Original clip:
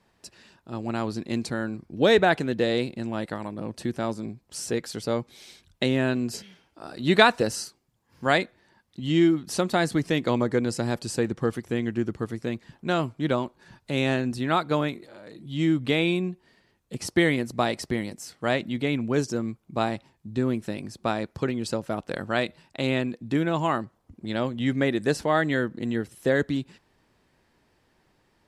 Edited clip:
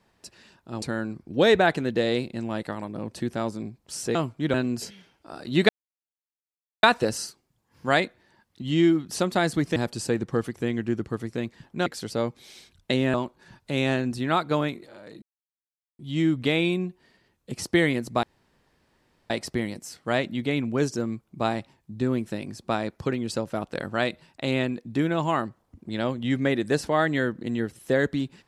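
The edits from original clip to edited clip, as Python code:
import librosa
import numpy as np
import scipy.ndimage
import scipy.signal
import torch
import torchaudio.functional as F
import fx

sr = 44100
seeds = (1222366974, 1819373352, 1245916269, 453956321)

y = fx.edit(x, sr, fx.cut(start_s=0.82, length_s=0.63),
    fx.swap(start_s=4.78, length_s=1.28, other_s=12.95, other_length_s=0.39),
    fx.insert_silence(at_s=7.21, length_s=1.14),
    fx.cut(start_s=10.14, length_s=0.71),
    fx.insert_silence(at_s=15.42, length_s=0.77),
    fx.insert_room_tone(at_s=17.66, length_s=1.07), tone=tone)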